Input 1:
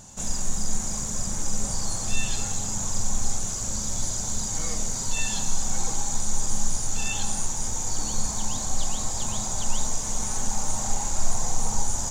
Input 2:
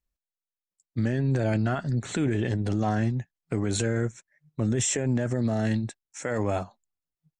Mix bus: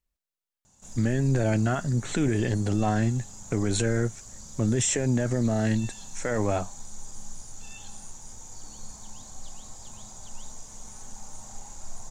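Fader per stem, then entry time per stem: -15.5, +1.0 dB; 0.65, 0.00 s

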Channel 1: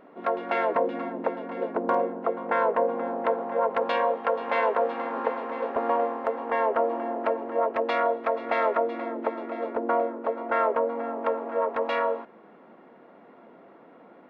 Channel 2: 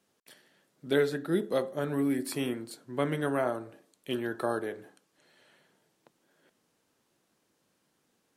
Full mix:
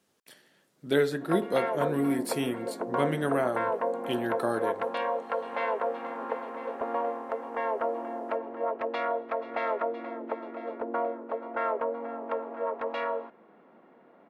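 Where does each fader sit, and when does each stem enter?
-5.5, +1.5 dB; 1.05, 0.00 s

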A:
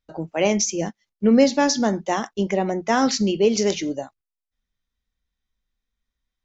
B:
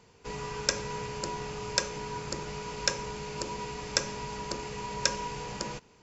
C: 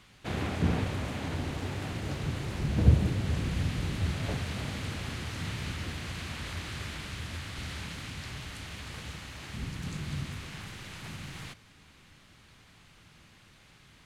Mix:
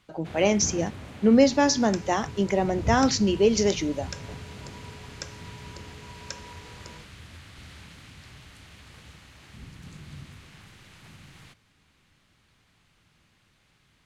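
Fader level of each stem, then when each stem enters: -2.0, -11.0, -7.5 dB; 0.00, 1.25, 0.00 s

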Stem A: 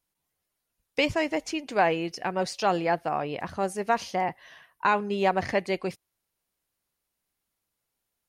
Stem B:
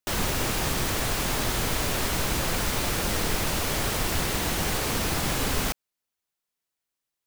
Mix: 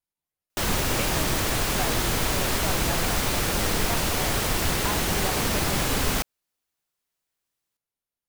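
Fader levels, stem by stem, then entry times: -10.5, +2.0 dB; 0.00, 0.50 s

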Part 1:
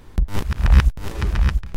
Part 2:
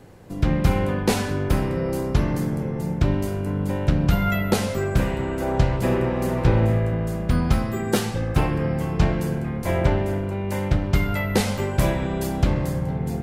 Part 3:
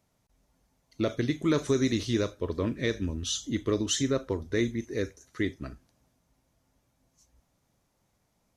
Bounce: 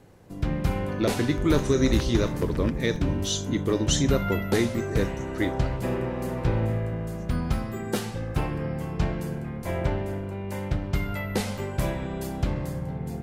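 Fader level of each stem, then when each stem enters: -13.5, -6.5, +2.5 dB; 1.20, 0.00, 0.00 s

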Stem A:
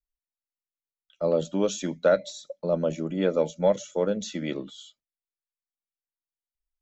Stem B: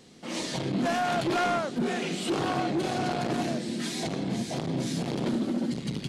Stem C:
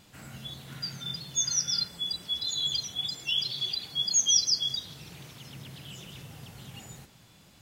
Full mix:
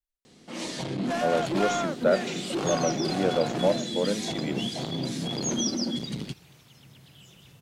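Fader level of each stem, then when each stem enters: -2.0, -1.5, -8.0 dB; 0.00, 0.25, 1.30 s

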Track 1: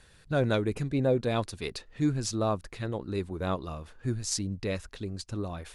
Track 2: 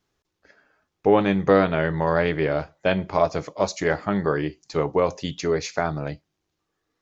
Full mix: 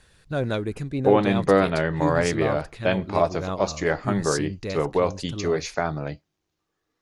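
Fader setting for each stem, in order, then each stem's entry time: +0.5, -1.0 dB; 0.00, 0.00 s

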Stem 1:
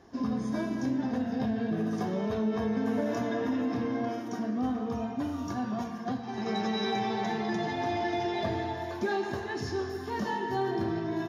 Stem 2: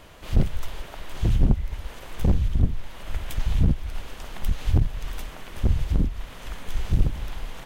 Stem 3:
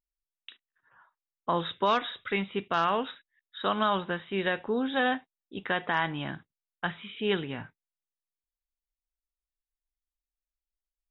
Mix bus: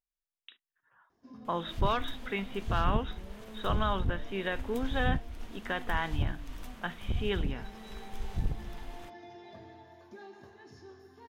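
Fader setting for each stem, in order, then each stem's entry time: -19.0, -11.0, -5.0 dB; 1.10, 1.45, 0.00 s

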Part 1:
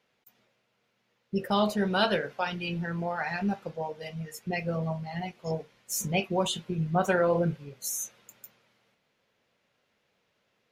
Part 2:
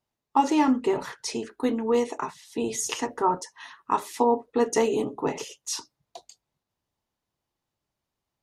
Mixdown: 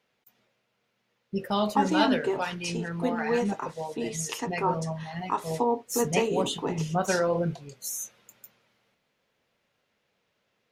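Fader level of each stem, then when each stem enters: -1.0, -4.0 dB; 0.00, 1.40 s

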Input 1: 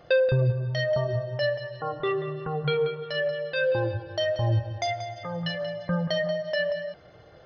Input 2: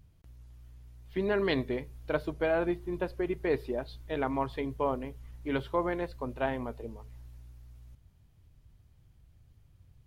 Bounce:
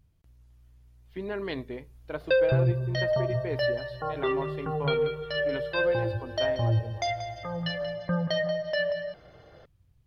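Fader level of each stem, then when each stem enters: -1.0, -5.0 dB; 2.20, 0.00 s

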